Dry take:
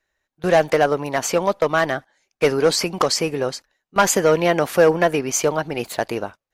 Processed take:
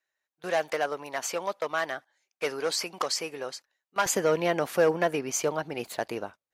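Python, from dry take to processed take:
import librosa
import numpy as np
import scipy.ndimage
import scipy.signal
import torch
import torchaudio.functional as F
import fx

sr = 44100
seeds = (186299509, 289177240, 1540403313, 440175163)

y = fx.highpass(x, sr, hz=fx.steps((0.0, 730.0), (4.06, 130.0)), slope=6)
y = y * 10.0 ** (-8.0 / 20.0)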